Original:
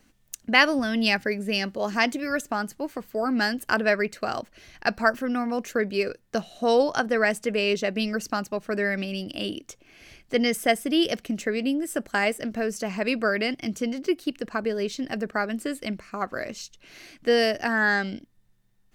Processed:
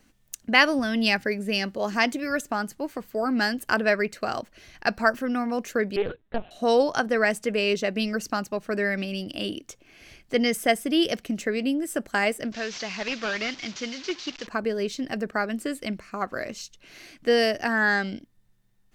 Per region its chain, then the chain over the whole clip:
5.96–6.51 s: sorted samples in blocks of 8 samples + LPC vocoder at 8 kHz pitch kept + loudspeaker Doppler distortion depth 0.18 ms
12.52–14.47 s: one-bit delta coder 32 kbps, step -37.5 dBFS + tilt shelf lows -8.5 dB, about 1.3 kHz
whole clip: none

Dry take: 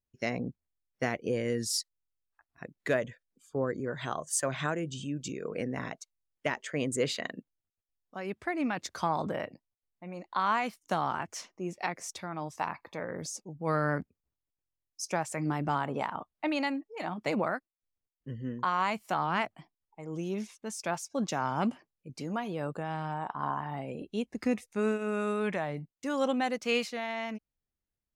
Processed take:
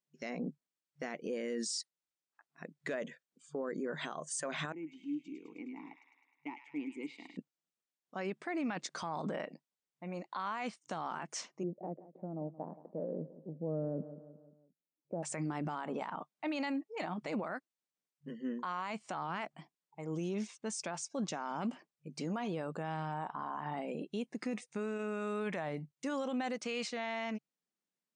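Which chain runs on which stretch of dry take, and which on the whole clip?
4.72–7.37 s: expander -40 dBFS + vowel filter u + feedback echo behind a high-pass 104 ms, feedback 66%, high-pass 1.8 kHz, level -4.5 dB
11.63–15.23 s: Chebyshev band-pass 110–600 Hz, order 3 + feedback delay 175 ms, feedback 48%, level -17 dB
whole clip: FFT band-pass 150–9300 Hz; peak limiter -29 dBFS

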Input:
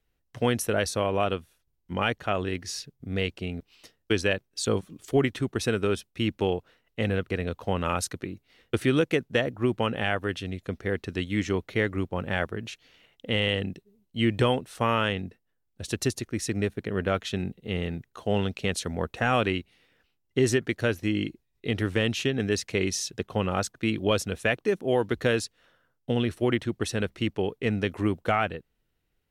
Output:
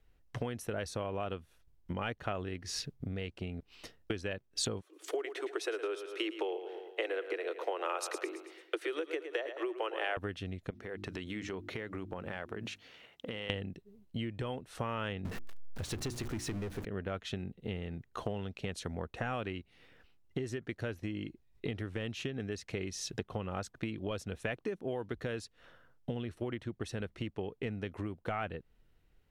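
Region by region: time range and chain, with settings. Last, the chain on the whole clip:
4.82–10.17 s: steep high-pass 320 Hz 96 dB/octave + feedback delay 111 ms, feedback 46%, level -13 dB
10.70–13.50 s: high-pass 210 Hz 6 dB/octave + hum notches 50/100/150/200/250/300/350 Hz + compression, threshold -40 dBFS
15.25–16.85 s: jump at every zero crossing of -33.5 dBFS + hum notches 60/120/180/240/300/360 Hz + waveshaping leveller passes 2
whole clip: tilt EQ -2.5 dB/octave; compression 16:1, threshold -34 dBFS; bass shelf 490 Hz -8.5 dB; trim +6 dB

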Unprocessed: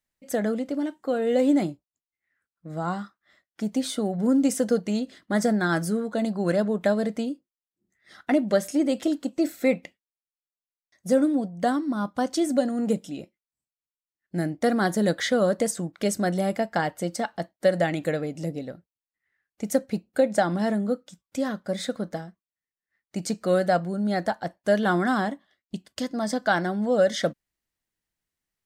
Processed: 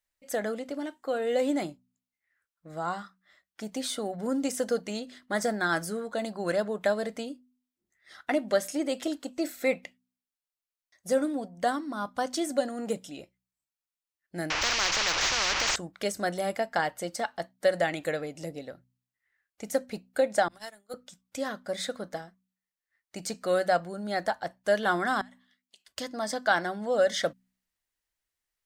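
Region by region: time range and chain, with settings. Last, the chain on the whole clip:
14.50–15.76 s: one-bit delta coder 32 kbps, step -28 dBFS + resonant high shelf 2.7 kHz -8 dB, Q 3 + spectrum-flattening compressor 10:1
20.48–20.94 s: expander -14 dBFS + tilt EQ +4 dB/octave + transient shaper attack +7 dB, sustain -5 dB
25.21–25.88 s: high-pass 1.3 kHz + compression 8:1, threshold -50 dBFS
whole clip: de-esser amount 55%; peaking EQ 190 Hz -11 dB 2.1 oct; de-hum 62.6 Hz, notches 4

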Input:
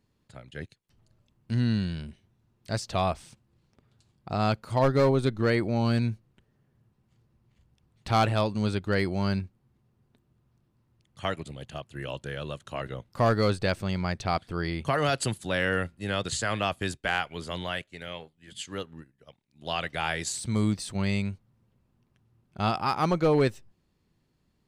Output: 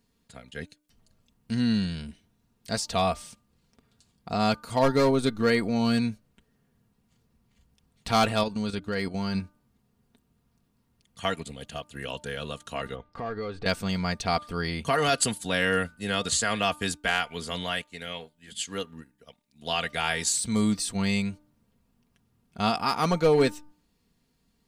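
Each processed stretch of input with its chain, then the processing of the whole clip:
8.43–9.35 s: treble shelf 8.3 kHz -4.5 dB + level held to a coarse grid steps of 10 dB
12.95–13.66 s: low-pass 2.5 kHz + compression 4:1, threshold -32 dBFS + comb 2.5 ms, depth 37%
whole clip: treble shelf 3.9 kHz +8 dB; comb 4.3 ms, depth 53%; de-hum 299.3 Hz, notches 5

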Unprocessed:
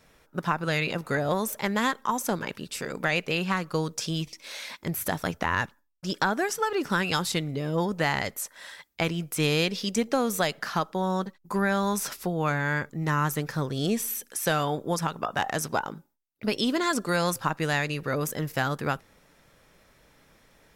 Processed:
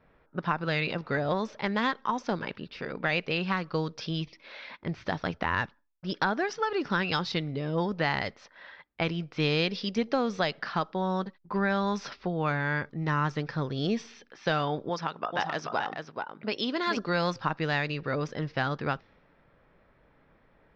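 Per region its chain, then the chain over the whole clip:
14.89–16.97 s: high-pass 63 Hz + bass shelf 200 Hz -10.5 dB + delay 433 ms -5 dB
whole clip: level-controlled noise filter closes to 1.7 kHz, open at -21 dBFS; steep low-pass 5.4 kHz 48 dB/octave; trim -2 dB

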